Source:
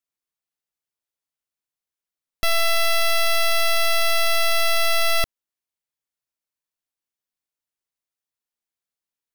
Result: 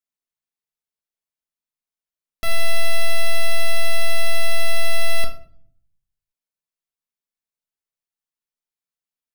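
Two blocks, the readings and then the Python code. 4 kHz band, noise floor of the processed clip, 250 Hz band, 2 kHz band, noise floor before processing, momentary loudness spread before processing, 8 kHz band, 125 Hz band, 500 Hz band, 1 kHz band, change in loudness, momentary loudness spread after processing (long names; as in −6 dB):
−5.5 dB, below −85 dBFS, can't be measured, −2.5 dB, below −85 dBFS, 4 LU, −4.0 dB, +10.0 dB, −3.0 dB, −7.5 dB, −4.0 dB, 4 LU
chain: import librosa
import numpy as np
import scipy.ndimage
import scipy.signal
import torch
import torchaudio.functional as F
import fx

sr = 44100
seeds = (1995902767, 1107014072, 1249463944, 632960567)

y = fx.room_shoebox(x, sr, seeds[0], volume_m3=800.0, walls='furnished', distance_m=1.5)
y = y * librosa.db_to_amplitude(-5.5)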